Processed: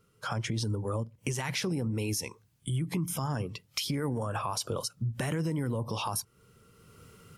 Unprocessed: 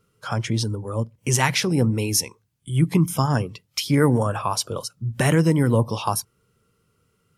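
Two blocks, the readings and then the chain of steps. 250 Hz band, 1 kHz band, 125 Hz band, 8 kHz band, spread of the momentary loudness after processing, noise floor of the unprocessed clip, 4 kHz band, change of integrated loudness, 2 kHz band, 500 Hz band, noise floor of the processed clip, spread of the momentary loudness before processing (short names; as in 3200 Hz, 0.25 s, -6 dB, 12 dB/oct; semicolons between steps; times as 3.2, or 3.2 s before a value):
-11.5 dB, -10.0 dB, -10.5 dB, -10.0 dB, 4 LU, -68 dBFS, -8.5 dB, -11.0 dB, -11.0 dB, -11.0 dB, -67 dBFS, 10 LU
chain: AGC gain up to 15 dB; limiter -11.5 dBFS, peak gain reduction 10.5 dB; compressor 2.5:1, threshold -32 dBFS, peak gain reduction 11.5 dB; gain -1.5 dB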